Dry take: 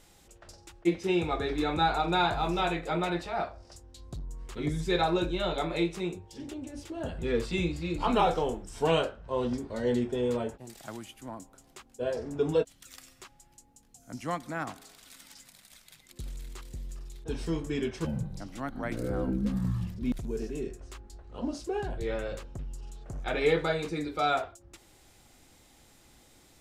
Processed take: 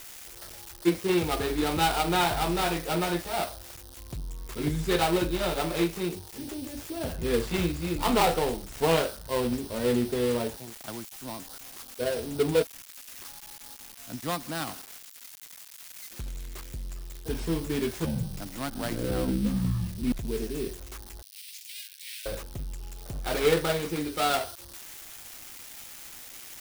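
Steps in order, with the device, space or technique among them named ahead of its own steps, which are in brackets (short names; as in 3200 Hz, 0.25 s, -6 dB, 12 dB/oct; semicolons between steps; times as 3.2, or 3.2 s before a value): budget class-D amplifier (switching dead time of 0.2 ms; switching spikes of -28 dBFS); 21.22–22.26 steep high-pass 2200 Hz 36 dB/oct; gain +2.5 dB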